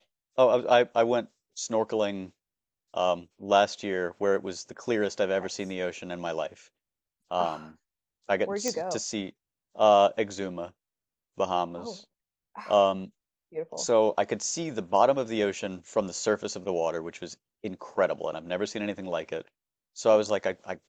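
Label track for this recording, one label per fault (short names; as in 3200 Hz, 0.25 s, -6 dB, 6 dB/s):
8.680000	8.680000	pop -13 dBFS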